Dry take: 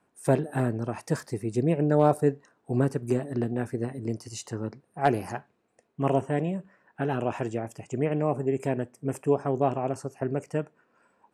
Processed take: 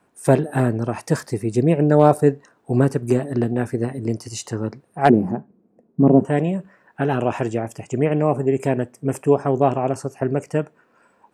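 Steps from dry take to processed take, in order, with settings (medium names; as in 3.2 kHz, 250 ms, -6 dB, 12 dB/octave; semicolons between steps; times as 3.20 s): 5.09–6.25 s: FFT filter 130 Hz 0 dB, 180 Hz +14 dB, 3.7 kHz -26 dB; trim +7.5 dB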